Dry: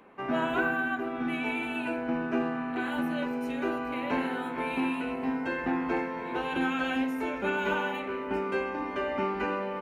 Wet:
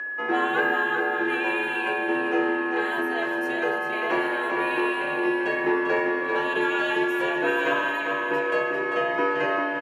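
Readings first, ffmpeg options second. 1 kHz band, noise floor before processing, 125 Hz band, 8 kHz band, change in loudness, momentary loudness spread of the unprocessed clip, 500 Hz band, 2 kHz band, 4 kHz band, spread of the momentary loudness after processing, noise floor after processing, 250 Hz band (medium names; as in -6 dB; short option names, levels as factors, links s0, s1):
+6.0 dB, -36 dBFS, -4.0 dB, no reading, +6.5 dB, 4 LU, +7.0 dB, +9.0 dB, +6.5 dB, 3 LU, -28 dBFS, +2.0 dB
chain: -af "aecho=1:1:395|790|1185|1580|1975:0.501|0.205|0.0842|0.0345|0.0142,aeval=exprs='val(0)+0.0224*sin(2*PI*1600*n/s)':c=same,afreqshift=94,volume=1.58"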